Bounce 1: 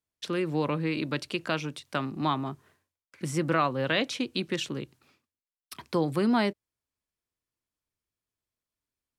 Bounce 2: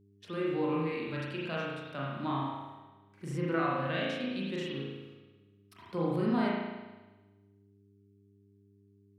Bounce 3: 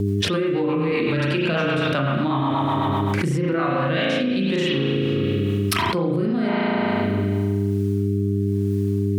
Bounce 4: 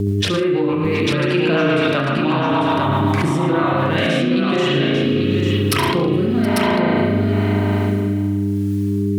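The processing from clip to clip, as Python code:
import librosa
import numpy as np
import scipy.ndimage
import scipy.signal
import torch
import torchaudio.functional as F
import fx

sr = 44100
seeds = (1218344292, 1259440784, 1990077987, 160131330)

y1 = fx.rev_spring(x, sr, rt60_s=1.2, pass_ms=(36,), chirp_ms=75, drr_db=-5.0)
y1 = fx.dmg_buzz(y1, sr, base_hz=100.0, harmonics=4, level_db=-54.0, tilt_db=-3, odd_only=False)
y1 = fx.hpss(y1, sr, part='percussive', gain_db=-10)
y1 = y1 * 10.0 ** (-8.5 / 20.0)
y2 = fx.rotary_switch(y1, sr, hz=8.0, then_hz=1.0, switch_at_s=3.36)
y2 = fx.env_flatten(y2, sr, amount_pct=100)
y2 = y2 * 10.0 ** (7.0 / 20.0)
y3 = fx.echo_multitap(y2, sr, ms=(69, 113, 152, 721, 846), db=(-11.0, -12.5, -20.0, -19.0, -4.5))
y3 = y3 * 10.0 ** (2.5 / 20.0)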